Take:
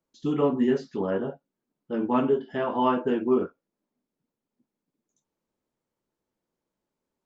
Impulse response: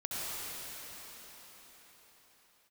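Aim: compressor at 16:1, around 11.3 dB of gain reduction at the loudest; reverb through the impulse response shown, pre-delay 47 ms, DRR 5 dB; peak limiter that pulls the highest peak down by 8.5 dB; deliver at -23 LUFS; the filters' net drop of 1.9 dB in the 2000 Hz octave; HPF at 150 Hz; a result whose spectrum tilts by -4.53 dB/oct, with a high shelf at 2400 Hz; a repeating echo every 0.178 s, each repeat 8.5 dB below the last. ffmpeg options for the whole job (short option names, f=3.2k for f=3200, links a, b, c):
-filter_complex "[0:a]highpass=150,equalizer=f=2k:t=o:g=-4,highshelf=f=2.4k:g=3,acompressor=threshold=-29dB:ratio=16,alimiter=level_in=5.5dB:limit=-24dB:level=0:latency=1,volume=-5.5dB,aecho=1:1:178|356|534|712:0.376|0.143|0.0543|0.0206,asplit=2[a][b];[1:a]atrim=start_sample=2205,adelay=47[c];[b][c]afir=irnorm=-1:irlink=0,volume=-10.5dB[d];[a][d]amix=inputs=2:normalize=0,volume=15dB"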